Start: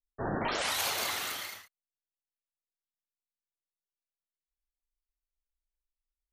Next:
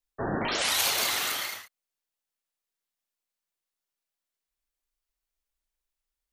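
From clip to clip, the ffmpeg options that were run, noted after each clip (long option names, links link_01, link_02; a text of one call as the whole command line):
ffmpeg -i in.wav -filter_complex "[0:a]lowshelf=frequency=200:gain=-6.5,acrossover=split=380|2200[link_01][link_02][link_03];[link_02]alimiter=level_in=9.5dB:limit=-24dB:level=0:latency=1:release=93,volume=-9.5dB[link_04];[link_01][link_04][link_03]amix=inputs=3:normalize=0,volume=7dB" out.wav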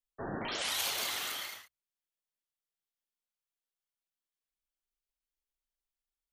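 ffmpeg -i in.wav -af "equalizer=frequency=3200:width_type=o:width=0.23:gain=4,bandreject=frequency=60:width_type=h:width=6,bandreject=frequency=120:width_type=h:width=6,volume=-8.5dB" out.wav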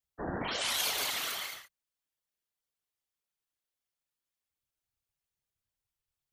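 ffmpeg -i in.wav -af "afftfilt=real='hypot(re,im)*cos(2*PI*random(0))':imag='hypot(re,im)*sin(2*PI*random(1))':win_size=512:overlap=0.75,volume=8dB" out.wav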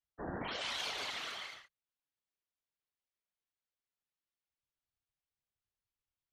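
ffmpeg -i in.wav -af "lowpass=4500,volume=-5dB" out.wav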